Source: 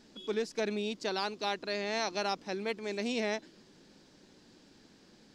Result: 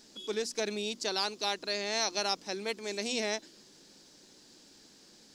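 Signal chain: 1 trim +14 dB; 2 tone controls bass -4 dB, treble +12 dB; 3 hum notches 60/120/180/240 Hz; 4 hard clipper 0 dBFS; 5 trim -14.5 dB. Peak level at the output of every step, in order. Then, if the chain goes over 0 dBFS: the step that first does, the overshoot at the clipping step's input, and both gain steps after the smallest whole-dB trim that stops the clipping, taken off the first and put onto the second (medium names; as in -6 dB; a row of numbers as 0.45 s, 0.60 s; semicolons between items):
-7.0 dBFS, -2.0 dBFS, -2.0 dBFS, -2.0 dBFS, -16.5 dBFS; nothing clips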